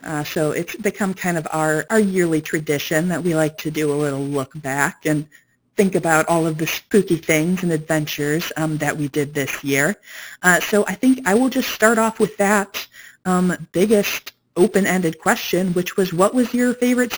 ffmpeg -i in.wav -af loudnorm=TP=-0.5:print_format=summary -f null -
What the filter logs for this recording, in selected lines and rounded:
Input Integrated:    -19.2 LUFS
Input True Peak:      -0.7 dBTP
Input LRA:             2.4 LU
Input Threshold:     -29.3 LUFS